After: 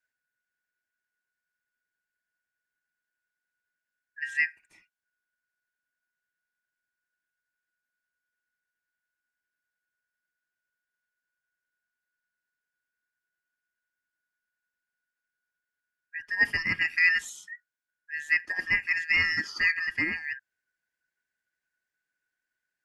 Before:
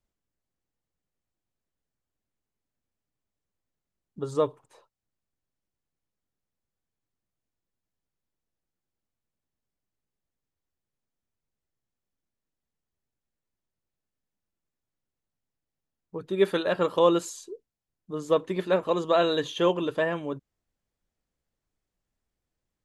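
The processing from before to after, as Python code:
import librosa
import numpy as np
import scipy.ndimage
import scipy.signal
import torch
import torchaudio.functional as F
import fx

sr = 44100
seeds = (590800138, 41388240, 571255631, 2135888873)

y = fx.band_shuffle(x, sr, order='2143')
y = y * librosa.db_to_amplitude(-2.5)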